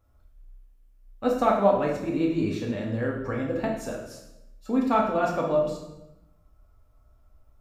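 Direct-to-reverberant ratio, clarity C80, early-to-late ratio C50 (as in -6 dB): -2.0 dB, 7.0 dB, 4.0 dB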